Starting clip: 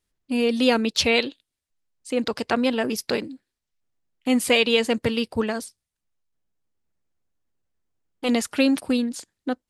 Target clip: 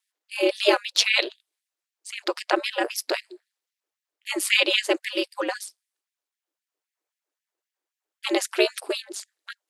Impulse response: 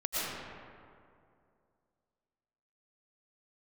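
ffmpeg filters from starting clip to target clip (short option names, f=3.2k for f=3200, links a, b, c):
-af "aeval=exprs='val(0)*sin(2*PI*100*n/s)':c=same,afftfilt=real='re*gte(b*sr/1024,260*pow(1700/260,0.5+0.5*sin(2*PI*3.8*pts/sr)))':imag='im*gte(b*sr/1024,260*pow(1700/260,0.5+0.5*sin(2*PI*3.8*pts/sr)))':win_size=1024:overlap=0.75,volume=4.5dB"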